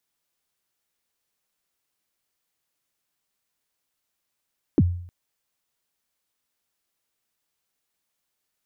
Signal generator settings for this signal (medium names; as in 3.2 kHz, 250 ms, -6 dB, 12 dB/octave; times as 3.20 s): kick drum length 0.31 s, from 380 Hz, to 88 Hz, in 41 ms, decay 0.60 s, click off, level -11 dB